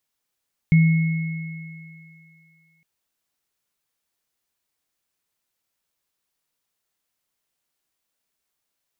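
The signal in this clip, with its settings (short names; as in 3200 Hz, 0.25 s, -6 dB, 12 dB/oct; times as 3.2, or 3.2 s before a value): sine partials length 2.11 s, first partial 162 Hz, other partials 2180 Hz, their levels -15 dB, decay 2.28 s, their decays 3.31 s, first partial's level -10 dB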